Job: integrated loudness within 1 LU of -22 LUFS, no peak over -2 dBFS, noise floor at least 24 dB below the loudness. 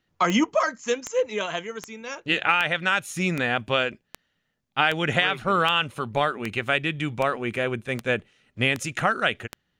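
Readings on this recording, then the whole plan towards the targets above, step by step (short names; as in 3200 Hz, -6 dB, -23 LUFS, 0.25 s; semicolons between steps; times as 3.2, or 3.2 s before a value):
clicks 13; loudness -24.5 LUFS; peak -5.0 dBFS; loudness target -22.0 LUFS
-> de-click; gain +2.5 dB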